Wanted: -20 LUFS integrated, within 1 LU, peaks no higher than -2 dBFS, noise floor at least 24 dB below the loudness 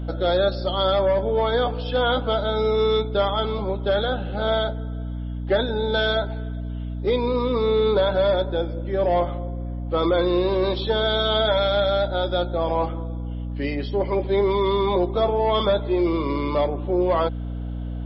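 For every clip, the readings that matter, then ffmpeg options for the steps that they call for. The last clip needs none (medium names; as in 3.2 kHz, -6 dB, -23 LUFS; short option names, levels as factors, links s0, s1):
hum 60 Hz; highest harmonic 300 Hz; hum level -27 dBFS; loudness -22.5 LUFS; peak level -9.0 dBFS; loudness target -20.0 LUFS
-> -af "bandreject=f=60:t=h:w=4,bandreject=f=120:t=h:w=4,bandreject=f=180:t=h:w=4,bandreject=f=240:t=h:w=4,bandreject=f=300:t=h:w=4"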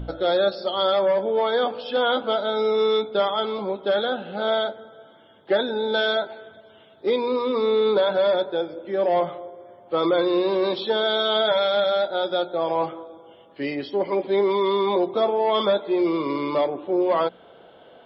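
hum not found; loudness -23.0 LUFS; peak level -10.0 dBFS; loudness target -20.0 LUFS
-> -af "volume=1.41"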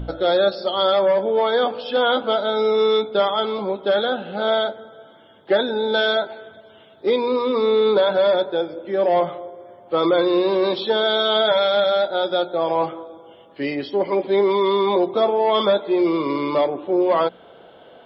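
loudness -20.0 LUFS; peak level -7.0 dBFS; noise floor -48 dBFS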